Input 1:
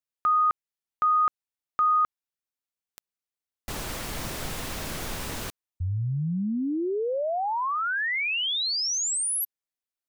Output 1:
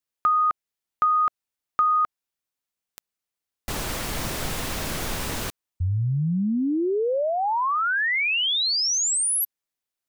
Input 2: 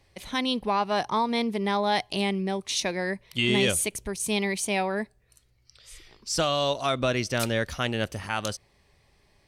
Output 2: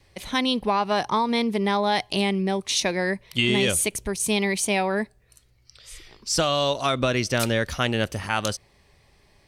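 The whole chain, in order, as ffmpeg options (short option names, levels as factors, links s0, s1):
-af "adynamicequalizer=threshold=0.01:dfrequency=690:dqfactor=5.1:tfrequency=690:tqfactor=5.1:attack=5:release=100:ratio=0.375:range=2:mode=cutabove:tftype=bell,acompressor=threshold=0.0447:ratio=2:attack=49:release=207:knee=1:detection=peak,volume=1.68"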